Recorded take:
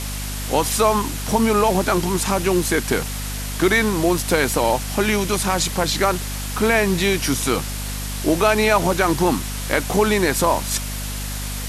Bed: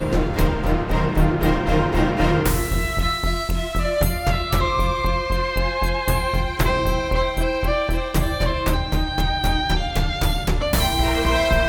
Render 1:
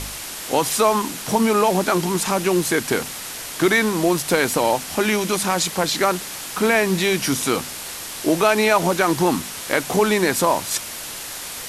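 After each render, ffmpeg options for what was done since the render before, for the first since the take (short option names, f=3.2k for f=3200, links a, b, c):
-af "bandreject=f=50:t=h:w=4,bandreject=f=100:t=h:w=4,bandreject=f=150:t=h:w=4,bandreject=f=200:t=h:w=4,bandreject=f=250:t=h:w=4"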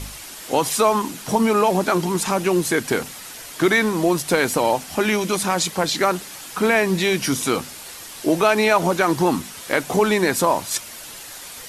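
-af "afftdn=nr=7:nf=-33"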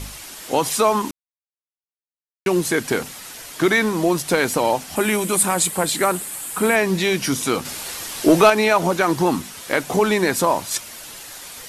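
-filter_complex "[0:a]asettb=1/sr,asplit=3[a][b][c];[a]atrim=end=4.964[d];[b]atrim=start=4.96:end=6.76,asetpts=PTS-STARTPTS,afade=t=in:d=0.004:c=qsin,afade=t=out:st=1.796:d=0.004:c=qsin,highshelf=f=7k:t=q:w=3:g=6[e];[c]atrim=start=6.756[f];[d][e]acrossfade=d=0.004:c1=hsin:c2=qsin[g];[g][f]acrossfade=d=0.004:c1=qsin:c2=hsin,asettb=1/sr,asplit=3[h][i][j];[h]atrim=end=7.654[k];[i]atrim=start=7.65:end=8.5,asetpts=PTS-STARTPTS,afade=t=in:d=0.004:c=qsin,afade=t=out:st=0.846:d=0.004:c=qsin,acontrast=61[l];[j]atrim=start=8.496[m];[k][l]acrossfade=d=0.004:c1=hsin:c2=qsin[n];[n][m]acrossfade=d=0.004:c1=qsin:c2=hsin,asplit=3[o][p][q];[o]atrim=end=1.11,asetpts=PTS-STARTPTS,afade=t=out:st=1.106:d=0.004:c=hsin[r];[p]atrim=start=1.11:end=2.46,asetpts=PTS-STARTPTS,volume=0[s];[q]atrim=start=2.46,asetpts=PTS-STARTPTS,afade=t=in:d=0.004:c=hsin[t];[r][s][t]concat=n=3:v=0:a=1"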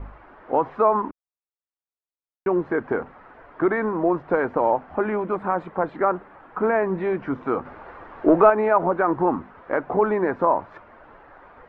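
-af "lowpass=f=1.4k:w=0.5412,lowpass=f=1.4k:w=1.3066,equalizer=f=150:t=o:w=1.7:g=-8"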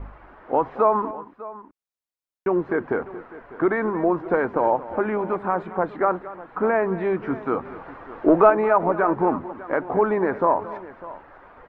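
-af "aecho=1:1:226|600:0.158|0.133"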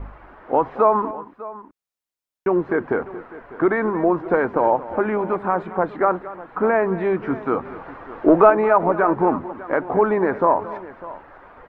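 -af "volume=2.5dB,alimiter=limit=-1dB:level=0:latency=1"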